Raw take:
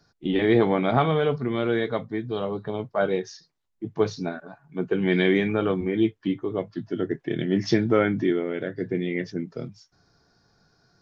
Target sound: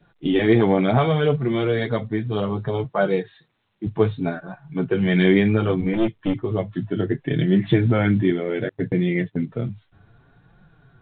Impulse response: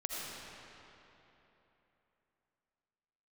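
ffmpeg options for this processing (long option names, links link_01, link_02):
-filter_complex "[0:a]flanger=delay=5.3:depth=5.4:regen=-8:speed=0.66:shape=triangular,adynamicequalizer=threshold=0.00562:dfrequency=1200:dqfactor=1.9:tfrequency=1200:tqfactor=1.9:attack=5:release=100:ratio=0.375:range=2:mode=cutabove:tftype=bell,asettb=1/sr,asplit=3[link_01][link_02][link_03];[link_01]atrim=end=2.844[link_04];[link_02]atrim=start=2.84:end=3.87,asetpts=PTS-STARTPTS,afade=type=in:duration=0.004:curve=qsin,afade=type=out:start_time=1.026:duration=0.004:curve=qsin,highpass=140[link_05];[link_03]atrim=start=3.866[link_06];[link_04][link_05]acrossfade=duration=0.004:curve1=hsin:curve2=qsin[link_07];[link_07][link_06]acrossfade=duration=0.004:curve1=qsin:curve2=hsin,asubboost=boost=2:cutoff=200,asplit=2[link_08][link_09];[link_09]acompressor=threshold=-32dB:ratio=10,volume=-2dB[link_10];[link_08][link_10]amix=inputs=2:normalize=0,asettb=1/sr,asplit=3[link_11][link_12][link_13];[link_11]atrim=end=5.934[link_14];[link_12]atrim=start=5.93:end=6.35,asetpts=PTS-STARTPTS,afade=type=in:duration=0.004:curve=qsin,afade=type=out:start_time=0.416:duration=0.004:curve=qsin,aeval=exprs='clip(val(0),-1,0.0422)':channel_layout=same[link_15];[link_13]atrim=start=6.346[link_16];[link_14][link_15]acrossfade=duration=0.004:curve1=hsin:curve2=qsin[link_17];[link_17][link_16]acrossfade=duration=0.004:curve1=qsin:curve2=hsin,asettb=1/sr,asplit=3[link_18][link_19][link_20];[link_18]atrim=end=8.694[link_21];[link_19]atrim=start=8.69:end=9.38,asetpts=PTS-STARTPTS,afade=type=in:duration=0.004:curve=qsin,afade=type=out:start_time=0.686:duration=0.004:curve=qsin,agate=range=-36dB:threshold=-29dB:ratio=16:detection=peak[link_22];[link_20]atrim=start=9.376[link_23];[link_21][link_22]acrossfade=duration=0.004:curve1=hsin:curve2=qsin[link_24];[link_24][link_23]acrossfade=duration=0.004:curve1=qsin:curve2=hsin,acontrast=21" -ar 8000 -c:a pcm_alaw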